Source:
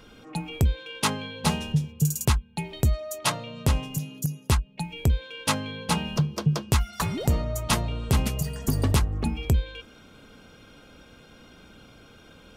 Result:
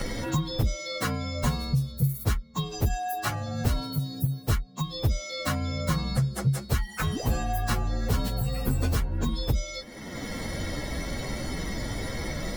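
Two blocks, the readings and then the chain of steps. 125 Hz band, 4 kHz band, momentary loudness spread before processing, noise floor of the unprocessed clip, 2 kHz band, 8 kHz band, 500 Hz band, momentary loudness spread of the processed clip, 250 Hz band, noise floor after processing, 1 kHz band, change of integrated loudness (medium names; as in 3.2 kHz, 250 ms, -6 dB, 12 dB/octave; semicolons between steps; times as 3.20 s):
-1.0 dB, -2.0 dB, 6 LU, -52 dBFS, -0.5 dB, -5.0 dB, -0.5 dB, 6 LU, -1.5 dB, -42 dBFS, -1.0 dB, -2.5 dB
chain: frequency axis rescaled in octaves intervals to 118%; three bands compressed up and down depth 100%; trim +1 dB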